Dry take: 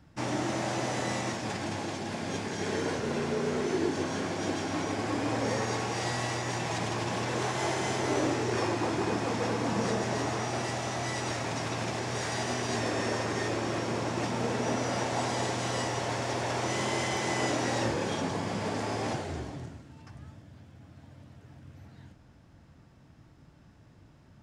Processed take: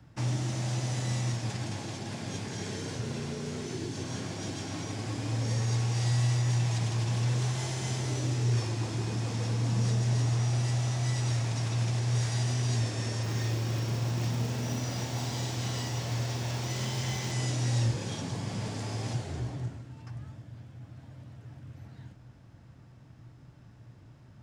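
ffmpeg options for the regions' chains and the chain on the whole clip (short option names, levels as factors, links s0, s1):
-filter_complex "[0:a]asettb=1/sr,asplit=3[s0][s1][s2];[s0]atrim=end=13.234[s3];[s1]atrim=start=13.23:end=17.32,asetpts=PTS-STARTPTS,afade=t=in:d=0.004:c=qsin,afade=t=out:st=4.086:d=0.004:c=qsin,acrossover=split=7400[s4][s5];[s5]acompressor=threshold=0.001:ratio=4:attack=1:release=60[s6];[s4][s6]amix=inputs=2:normalize=0,asplit=2[s7][s8];[s8]adelay=37,volume=0.562[s9];[s7][s9]amix=inputs=2:normalize=0,atrim=end_sample=180369,acrusher=bits=6:mode=log:mix=0:aa=0.000001[s10];[s2]atrim=start=17.316[s11];[s3][s10]acrossfade=d=0.004:c1=hsin:c2=qsin[s12];[s12][s11]acrossfade=d=0.004:c1=qsin:c2=hsin,equalizer=f=120:w=6.8:g=13.5,acrossover=split=210|3000[s13][s14][s15];[s14]acompressor=threshold=0.00891:ratio=5[s16];[s13][s16][s15]amix=inputs=3:normalize=0"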